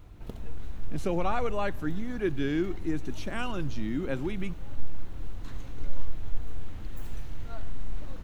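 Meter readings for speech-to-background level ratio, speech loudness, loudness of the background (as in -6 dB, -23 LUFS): 11.5 dB, -32.5 LUFS, -44.0 LUFS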